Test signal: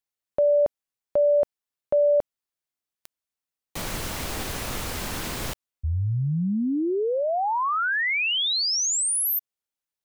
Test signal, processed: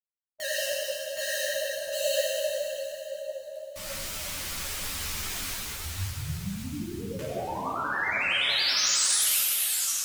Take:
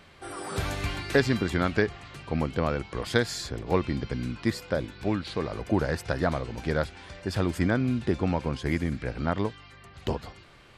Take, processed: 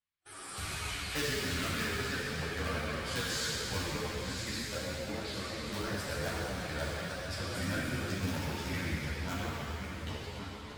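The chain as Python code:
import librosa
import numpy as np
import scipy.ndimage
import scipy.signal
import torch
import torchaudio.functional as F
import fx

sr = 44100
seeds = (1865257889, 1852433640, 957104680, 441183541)

p1 = fx.reverse_delay_fb(x, sr, ms=551, feedback_pct=48, wet_db=-6.0)
p2 = fx.gate_hold(p1, sr, open_db=-31.0, close_db=-37.0, hold_ms=137.0, range_db=-34, attack_ms=15.0, release_ms=44.0)
p3 = fx.dynamic_eq(p2, sr, hz=570.0, q=3.7, threshold_db=-36.0, ratio=8.0, max_db=6)
p4 = (np.mod(10.0 ** (12.5 / 20.0) * p3 + 1.0, 2.0) - 1.0) / 10.0 ** (12.5 / 20.0)
p5 = p3 + (p4 * librosa.db_to_amplitude(-7.0))
p6 = fx.tone_stack(p5, sr, knobs='5-5-5')
p7 = fx.wow_flutter(p6, sr, seeds[0], rate_hz=11.0, depth_cents=130.0)
p8 = 10.0 ** (-22.0 / 20.0) * np.tanh(p7 / 10.0 ** (-22.0 / 20.0))
p9 = fx.rev_plate(p8, sr, seeds[1], rt60_s=3.3, hf_ratio=0.95, predelay_ms=0, drr_db=-6.0)
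y = fx.ensemble(p9, sr)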